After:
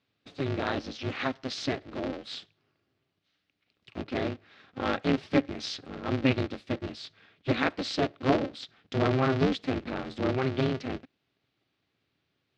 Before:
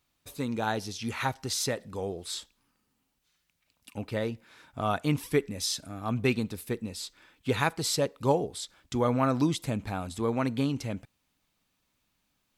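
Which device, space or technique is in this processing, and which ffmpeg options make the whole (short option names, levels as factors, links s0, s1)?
ring modulator pedal into a guitar cabinet: -af "aeval=exprs='val(0)*sgn(sin(2*PI*130*n/s))':c=same,highpass=91,equalizer=f=110:t=q:w=4:g=6,equalizer=f=280:t=q:w=4:g=5,equalizer=f=960:t=q:w=4:g=-7,lowpass=f=4500:w=0.5412,lowpass=f=4500:w=1.3066"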